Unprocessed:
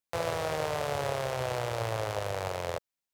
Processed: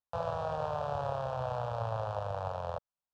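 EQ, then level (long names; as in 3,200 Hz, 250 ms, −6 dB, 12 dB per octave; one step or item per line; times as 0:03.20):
low-pass filter 2,400 Hz 12 dB per octave
phaser with its sweep stopped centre 860 Hz, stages 4
0.0 dB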